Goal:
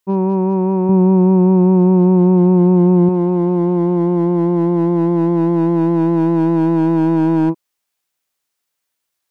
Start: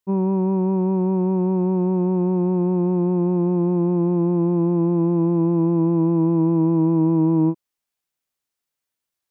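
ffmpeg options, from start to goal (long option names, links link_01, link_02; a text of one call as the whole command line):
ffmpeg -i in.wav -filter_complex "[0:a]lowshelf=frequency=300:gain=-6.5,volume=18.5dB,asoftclip=hard,volume=-18.5dB,asettb=1/sr,asplit=3[link_01][link_02][link_03];[link_01]atrim=end=0.894[link_04];[link_02]atrim=start=0.89:end=3.09,asetpts=PTS-STARTPTS,afade=type=in:duration=0.004:curve=qsin,afade=type=out:start_time=2.196:duration=0.004:curve=qsin,equalizer=frequency=120:width_type=o:width=2.2:gain=8[link_05];[link_03]atrim=start=3.086[link_06];[link_04][link_05]acrossfade=duration=0.004:curve1=hsin:curve2=qsin[link_07];[link_07][link_06]acrossfade=duration=0.004:curve1=qsin:curve2=hsin,volume=8dB" out.wav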